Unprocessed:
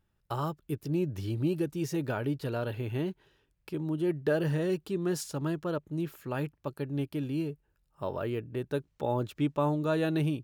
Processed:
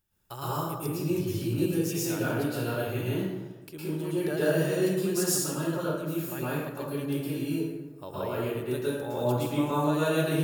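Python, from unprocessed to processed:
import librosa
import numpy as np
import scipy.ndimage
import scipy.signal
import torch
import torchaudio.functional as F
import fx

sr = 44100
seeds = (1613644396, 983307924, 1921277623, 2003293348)

y = librosa.effects.preemphasis(x, coef=0.8, zi=[0.0])
y = fx.rev_plate(y, sr, seeds[0], rt60_s=1.3, hf_ratio=0.5, predelay_ms=100, drr_db=-9.5)
y = y * 10.0 ** (5.5 / 20.0)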